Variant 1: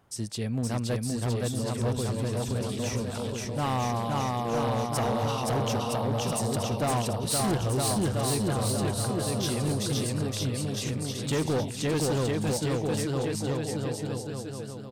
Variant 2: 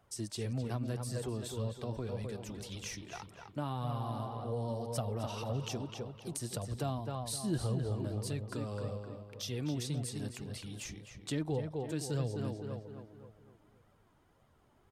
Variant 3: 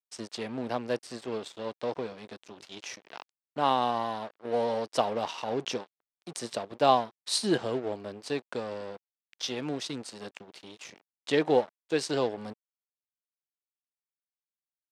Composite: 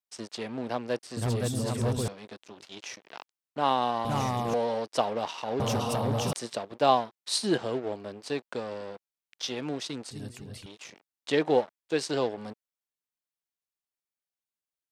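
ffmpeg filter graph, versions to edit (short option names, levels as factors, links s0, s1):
-filter_complex "[0:a]asplit=3[s0][s1][s2];[2:a]asplit=5[s3][s4][s5][s6][s7];[s3]atrim=end=1.172[s8];[s0]atrim=start=1.168:end=2.082[s9];[s4]atrim=start=2.078:end=4.052[s10];[s1]atrim=start=4.048:end=4.542[s11];[s5]atrim=start=4.538:end=5.602[s12];[s2]atrim=start=5.598:end=6.332[s13];[s6]atrim=start=6.328:end=10.112[s14];[1:a]atrim=start=10.108:end=10.662[s15];[s7]atrim=start=10.658[s16];[s8][s9]acrossfade=d=0.004:c1=hsin:c2=hsin[s17];[s17][s10]acrossfade=d=0.004:c1=hsin:c2=hsin[s18];[s18][s11]acrossfade=d=0.004:c1=hsin:c2=hsin[s19];[s19][s12]acrossfade=d=0.004:c1=hsin:c2=hsin[s20];[s20][s13]acrossfade=d=0.004:c1=hsin:c2=hsin[s21];[s21][s14]acrossfade=d=0.004:c1=hsin:c2=hsin[s22];[s22][s15]acrossfade=d=0.004:c1=hsin:c2=hsin[s23];[s23][s16]acrossfade=d=0.004:c1=hsin:c2=hsin"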